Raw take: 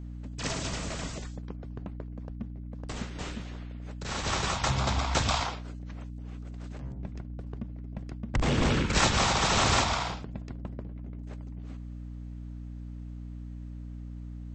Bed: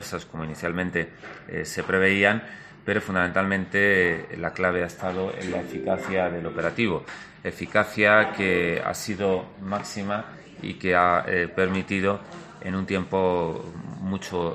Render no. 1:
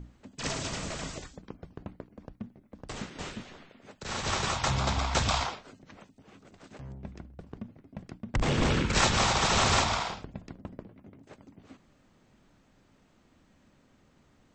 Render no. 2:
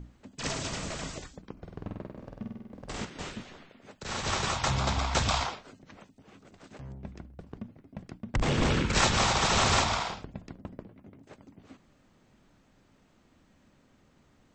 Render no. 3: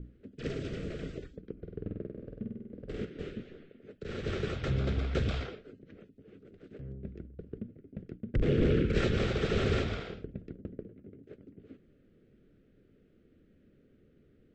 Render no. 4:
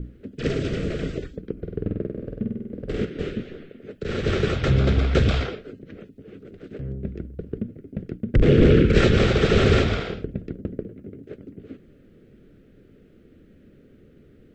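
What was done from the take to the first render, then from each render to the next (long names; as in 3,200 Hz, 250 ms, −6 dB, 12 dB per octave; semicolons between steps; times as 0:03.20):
mains-hum notches 60/120/180/240/300 Hz
0:01.52–0:03.05: flutter between parallel walls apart 8.3 metres, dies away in 1.2 s
drawn EQ curve 270 Hz 0 dB, 440 Hz +7 dB, 950 Hz −27 dB, 1,400 Hz −8 dB, 3,200 Hz −10 dB, 6,500 Hz −24 dB
level +11.5 dB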